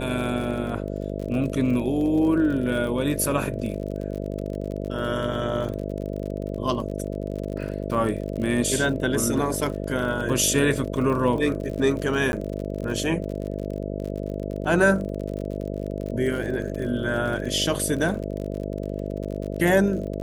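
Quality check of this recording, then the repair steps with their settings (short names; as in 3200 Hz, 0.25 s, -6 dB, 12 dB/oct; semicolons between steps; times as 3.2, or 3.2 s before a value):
buzz 50 Hz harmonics 13 -30 dBFS
crackle 41/s -31 dBFS
12.32–12.33 gap 11 ms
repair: de-click; de-hum 50 Hz, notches 13; interpolate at 12.32, 11 ms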